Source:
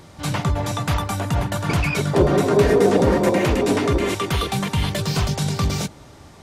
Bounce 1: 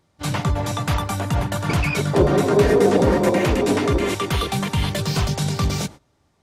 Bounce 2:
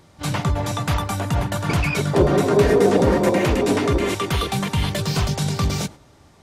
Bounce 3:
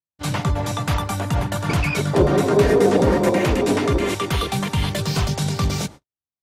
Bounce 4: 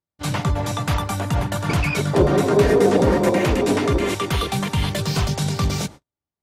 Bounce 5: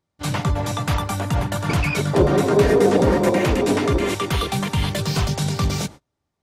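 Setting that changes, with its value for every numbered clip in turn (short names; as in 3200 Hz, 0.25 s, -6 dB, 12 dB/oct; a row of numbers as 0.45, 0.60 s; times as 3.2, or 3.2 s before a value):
gate, range: -20, -7, -60, -48, -34 dB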